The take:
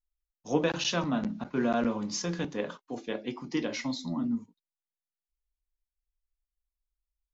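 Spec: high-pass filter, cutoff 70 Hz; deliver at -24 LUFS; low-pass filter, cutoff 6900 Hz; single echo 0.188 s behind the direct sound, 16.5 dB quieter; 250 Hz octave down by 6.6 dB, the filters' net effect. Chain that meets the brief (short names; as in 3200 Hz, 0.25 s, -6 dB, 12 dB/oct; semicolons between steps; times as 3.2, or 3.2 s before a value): HPF 70 Hz; LPF 6900 Hz; bell 250 Hz -8 dB; echo 0.188 s -16.5 dB; gain +10.5 dB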